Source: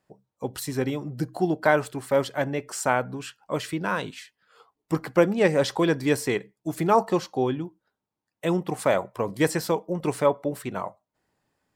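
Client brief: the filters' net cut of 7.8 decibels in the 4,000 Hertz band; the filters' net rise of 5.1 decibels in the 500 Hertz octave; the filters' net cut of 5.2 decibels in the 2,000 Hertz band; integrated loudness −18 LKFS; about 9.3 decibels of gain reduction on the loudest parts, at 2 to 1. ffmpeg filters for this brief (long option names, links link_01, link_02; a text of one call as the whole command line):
ffmpeg -i in.wav -af "equalizer=frequency=500:width_type=o:gain=6.5,equalizer=frequency=2000:width_type=o:gain=-6,equalizer=frequency=4000:width_type=o:gain=-8.5,acompressor=threshold=-26dB:ratio=2,volume=10.5dB" out.wav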